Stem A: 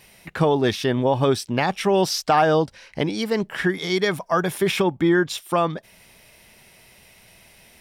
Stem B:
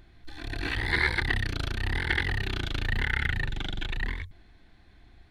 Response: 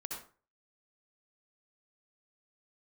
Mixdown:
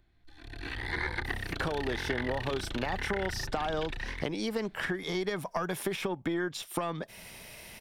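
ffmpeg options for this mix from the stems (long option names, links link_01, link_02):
-filter_complex "[0:a]acompressor=threshold=-30dB:ratio=6,adelay=1250,volume=-5dB[link_01];[1:a]volume=-10.5dB[link_02];[link_01][link_02]amix=inputs=2:normalize=0,dynaudnorm=framelen=170:gausssize=9:maxgain=11dB,aeval=exprs='(tanh(2.82*val(0)+0.55)-tanh(0.55))/2.82':channel_layout=same,acrossover=split=300|1500[link_03][link_04][link_05];[link_03]acompressor=threshold=-37dB:ratio=4[link_06];[link_04]acompressor=threshold=-31dB:ratio=4[link_07];[link_05]acompressor=threshold=-38dB:ratio=4[link_08];[link_06][link_07][link_08]amix=inputs=3:normalize=0"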